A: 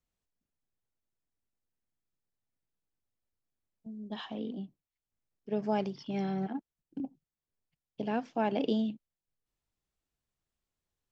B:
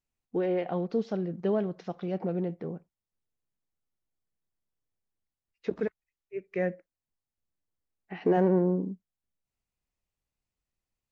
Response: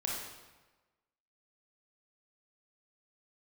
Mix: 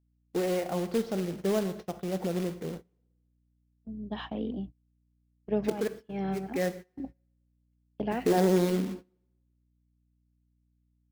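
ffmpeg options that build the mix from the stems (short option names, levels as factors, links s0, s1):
-filter_complex "[0:a]bass=f=250:g=-1,treble=f=4000:g=-13,dynaudnorm=f=320:g=17:m=1.68,aeval=exprs='val(0)+0.00398*(sin(2*PI*60*n/s)+sin(2*PI*2*60*n/s)/2+sin(2*PI*3*60*n/s)/3+sin(2*PI*4*60*n/s)/4+sin(2*PI*5*60*n/s)/5)':c=same,volume=1[s0];[1:a]acrusher=bits=3:mode=log:mix=0:aa=0.000001,volume=0.75,asplit=3[s1][s2][s3];[s2]volume=0.282[s4];[s3]apad=whole_len=490318[s5];[s0][s5]sidechaincompress=threshold=0.00708:ratio=10:attack=45:release=467[s6];[2:a]atrim=start_sample=2205[s7];[s4][s7]afir=irnorm=-1:irlink=0[s8];[s6][s1][s8]amix=inputs=3:normalize=0,agate=range=0.0794:threshold=0.01:ratio=16:detection=peak"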